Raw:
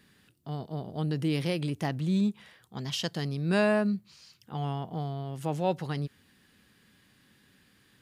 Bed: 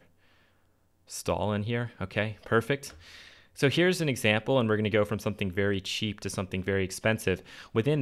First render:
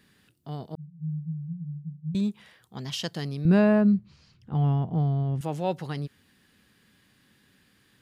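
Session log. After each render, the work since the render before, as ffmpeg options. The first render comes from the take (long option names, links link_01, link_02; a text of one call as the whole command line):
ffmpeg -i in.wav -filter_complex "[0:a]asettb=1/sr,asplit=3[link_01][link_02][link_03];[link_01]atrim=end=0.754[link_04];[link_02]atrim=start=0.75:end=2.15,asetpts=PTS-STARTPTS,afade=type=in:duration=0.004:curve=qsin,afade=type=out:start_time=1.396:duration=0.004:curve=qsin,asuperpass=centerf=160:order=12:qfactor=5.1[link_05];[link_03]atrim=start=2.146[link_06];[link_04][link_05]acrossfade=duration=0.004:curve1=hsin:curve2=qsin[link_07];[link_07][link_06]acrossfade=duration=0.004:curve1=qsin:curve2=hsin,asettb=1/sr,asplit=3[link_08][link_09][link_10];[link_08]atrim=end=3.454[link_11];[link_09]atrim=start=3.45:end=5.41,asetpts=PTS-STARTPTS,afade=type=in:duration=0.004:curve=qsin,afade=type=out:start_time=1.956:duration=0.004:curve=qsin,aemphasis=mode=reproduction:type=riaa[link_12];[link_10]atrim=start=5.406[link_13];[link_11][link_12]acrossfade=duration=0.004:curve1=hsin:curve2=qsin[link_14];[link_14][link_13]acrossfade=duration=0.004:curve1=qsin:curve2=hsin" out.wav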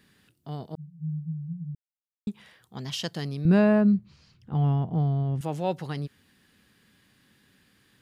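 ffmpeg -i in.wav -filter_complex "[0:a]asplit=3[link_01][link_02][link_03];[link_01]atrim=end=1.75,asetpts=PTS-STARTPTS,afade=type=out:start_time=1.746:duration=0.004:curve=hsin[link_04];[link_02]atrim=start=1.75:end=2.27,asetpts=PTS-STARTPTS,volume=0[link_05];[link_03]atrim=start=2.27,asetpts=PTS-STARTPTS,afade=type=in:duration=0.004:curve=hsin[link_06];[link_04][link_05][link_06]concat=n=3:v=0:a=1" out.wav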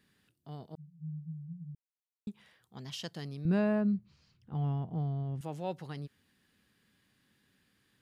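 ffmpeg -i in.wav -af "volume=-9dB" out.wav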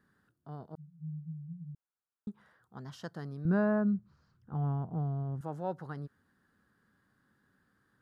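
ffmpeg -i in.wav -af "highshelf=frequency=1900:width_type=q:width=3:gain=-9" out.wav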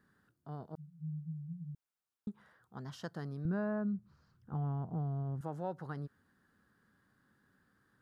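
ffmpeg -i in.wav -af "acompressor=threshold=-35dB:ratio=2.5" out.wav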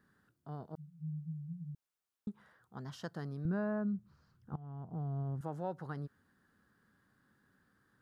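ffmpeg -i in.wav -filter_complex "[0:a]asplit=2[link_01][link_02];[link_01]atrim=end=4.56,asetpts=PTS-STARTPTS,afade=type=out:start_time=4.556:duration=0.004:curve=hsin:silence=0.105925[link_03];[link_02]atrim=start=4.56,asetpts=PTS-STARTPTS,afade=type=in:duration=0.64:silence=0.105925[link_04];[link_03][link_04]concat=n=2:v=0:a=1" out.wav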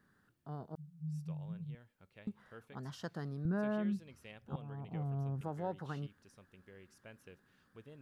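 ffmpeg -i in.wav -i bed.wav -filter_complex "[1:a]volume=-29dB[link_01];[0:a][link_01]amix=inputs=2:normalize=0" out.wav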